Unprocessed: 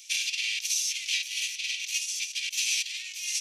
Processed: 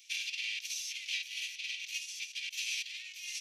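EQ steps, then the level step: high-pass 1.2 kHz; peaking EQ 8.6 kHz -11 dB 1.6 oct; -4.0 dB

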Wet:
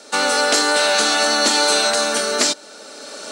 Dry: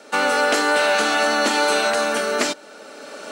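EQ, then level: high-order bell 6 kHz +9 dB; 0.0 dB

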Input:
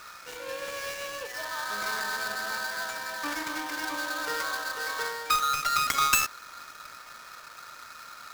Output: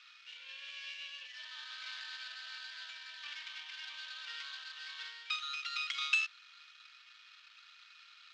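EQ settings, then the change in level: ladder band-pass 3.4 kHz, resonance 55%; distance through air 140 m; +6.0 dB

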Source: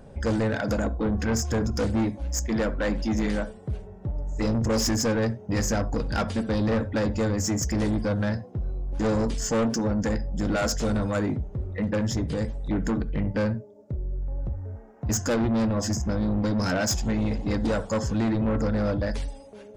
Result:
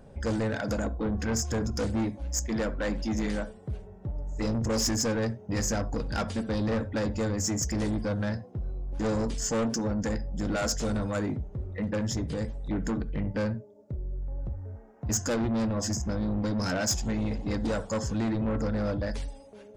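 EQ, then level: dynamic bell 7.5 kHz, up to +4 dB, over -46 dBFS, Q 0.87; -4.0 dB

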